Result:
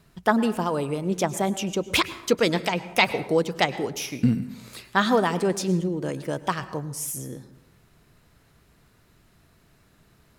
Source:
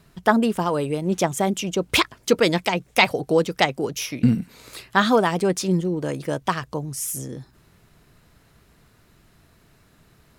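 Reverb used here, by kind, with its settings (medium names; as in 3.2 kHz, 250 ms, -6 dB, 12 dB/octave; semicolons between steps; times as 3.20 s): plate-style reverb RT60 0.84 s, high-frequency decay 0.55×, pre-delay 90 ms, DRR 14 dB; trim -3 dB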